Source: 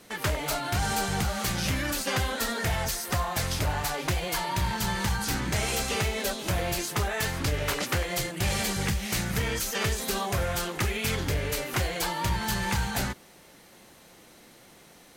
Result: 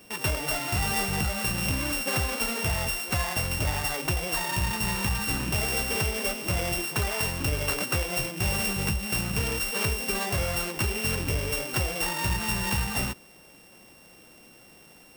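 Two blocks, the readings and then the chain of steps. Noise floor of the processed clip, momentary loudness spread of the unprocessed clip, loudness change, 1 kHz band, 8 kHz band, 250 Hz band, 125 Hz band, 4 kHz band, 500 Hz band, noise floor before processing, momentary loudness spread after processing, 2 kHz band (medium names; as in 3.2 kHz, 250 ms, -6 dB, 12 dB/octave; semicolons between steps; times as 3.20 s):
-53 dBFS, 2 LU, +1.5 dB, -2.0 dB, +1.0 dB, 0.0 dB, 0.0 dB, +0.5 dB, -1.0 dB, -54 dBFS, 2 LU, +1.5 dB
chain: sorted samples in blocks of 16 samples; treble shelf 8.1 kHz +4.5 dB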